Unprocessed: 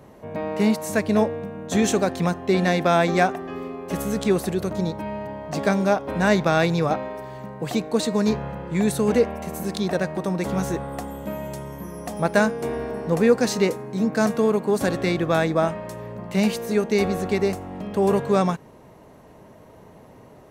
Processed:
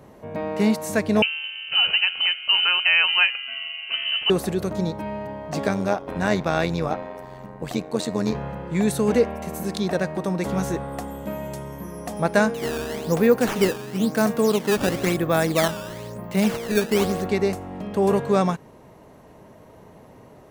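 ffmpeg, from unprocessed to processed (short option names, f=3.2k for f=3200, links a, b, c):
-filter_complex "[0:a]asettb=1/sr,asplit=3[a][b][c];[a]atrim=end=1.224[d];[b]atrim=start=1.22:end=4.3,asetpts=PTS-STARTPTS,afade=t=in:d=0.004:c=qsin,afade=t=out:st=3.076:d=0.004:c=qsin,lowpass=f=2.7k:t=q:w=0.5098,lowpass=f=2.7k:t=q:w=0.6013,lowpass=f=2.7k:t=q:w=0.9,lowpass=f=2.7k:t=q:w=2.563,afreqshift=-3200[e];[c]atrim=start=4.296[f];[d][e]acrossfade=d=0.004:c1=hsin:c2=qsin[g];[g][f]acrossfade=d=0.004:c1=qsin:c2=hsin,asettb=1/sr,asplit=3[h][i][j];[h]atrim=end=5.674[k];[i]atrim=start=5.67:end=8.35,asetpts=PTS-STARTPTS,afade=t=in:d=0.004:c=qsin,afade=t=out:st=2.676:d=0.004:c=qsin,tremolo=f=90:d=0.71[l];[j]atrim=start=8.346[m];[k][l]acrossfade=d=0.004:c1=hsin:c2=qsin[n];[n][m]acrossfade=d=0.004:c1=qsin:c2=hsin,asettb=1/sr,asplit=3[o][p][q];[o]atrim=end=12.544[r];[p]atrim=start=12.54:end=17.26,asetpts=PTS-STARTPTS,afade=t=in:d=0.004:c=qsin,afade=t=out:st=4.716:d=0.004:c=qsin,acrusher=samples=12:mix=1:aa=0.000001:lfo=1:lforange=19.2:lforate=1[s];[q]atrim=start=17.256[t];[r][s]acrossfade=d=0.004:c1=hsin:c2=qsin[u];[u][t]acrossfade=d=0.004:c1=qsin:c2=hsin"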